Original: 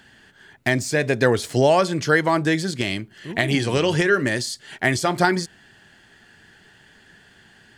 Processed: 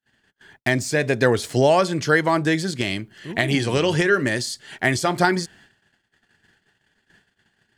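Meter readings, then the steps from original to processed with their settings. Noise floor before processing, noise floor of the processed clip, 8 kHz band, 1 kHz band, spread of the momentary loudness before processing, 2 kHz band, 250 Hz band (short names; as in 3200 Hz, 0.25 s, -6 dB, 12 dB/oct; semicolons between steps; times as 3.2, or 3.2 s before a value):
-53 dBFS, -71 dBFS, 0.0 dB, 0.0 dB, 9 LU, 0.0 dB, 0.0 dB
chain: gate -49 dBFS, range -40 dB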